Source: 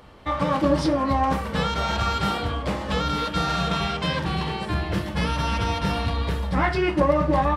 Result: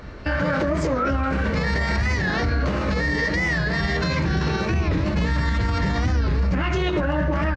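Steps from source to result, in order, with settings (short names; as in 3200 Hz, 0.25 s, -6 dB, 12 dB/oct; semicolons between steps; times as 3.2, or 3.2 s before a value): thirty-one-band EQ 500 Hz -4 dB, 800 Hz -8 dB, 2500 Hz -7 dB; formant shift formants +5 st; Gaussian blur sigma 1.6 samples; low shelf 100 Hz +8 dB; on a send: echo 0.113 s -16 dB; on the sum: compressor, threshold -22 dBFS, peak gain reduction 8 dB; limiter -23 dBFS, peak gain reduction 9 dB; record warp 45 rpm, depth 160 cents; gain +9 dB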